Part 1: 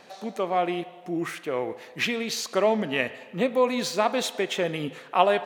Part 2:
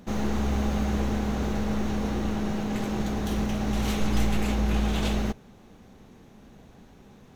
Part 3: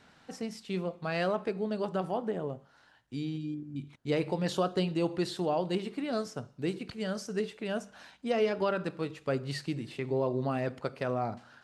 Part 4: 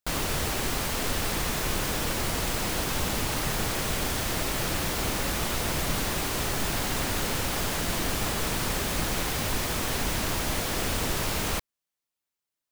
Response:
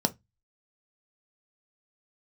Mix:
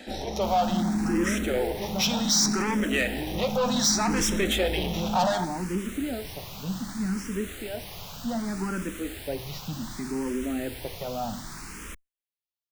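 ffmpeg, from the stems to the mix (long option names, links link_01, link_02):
-filter_complex "[0:a]highpass=390,equalizer=frequency=5500:width_type=o:width=1:gain=12.5,volume=2.5dB,asplit=2[link_01][link_02];[link_02]volume=-6.5dB[link_03];[1:a]volume=-5dB,asplit=2[link_04][link_05];[link_05]volume=-8dB[link_06];[2:a]volume=-3dB,asplit=2[link_07][link_08];[link_08]volume=-7dB[link_09];[3:a]adelay=350,volume=-8dB[link_10];[4:a]atrim=start_sample=2205[link_11];[link_03][link_06][link_09]amix=inputs=3:normalize=0[link_12];[link_12][link_11]afir=irnorm=-1:irlink=0[link_13];[link_01][link_04][link_07][link_10][link_13]amix=inputs=5:normalize=0,equalizer=frequency=540:width_type=o:width=1.2:gain=-5.5,asoftclip=type=tanh:threshold=-18dB,asplit=2[link_14][link_15];[link_15]afreqshift=0.66[link_16];[link_14][link_16]amix=inputs=2:normalize=1"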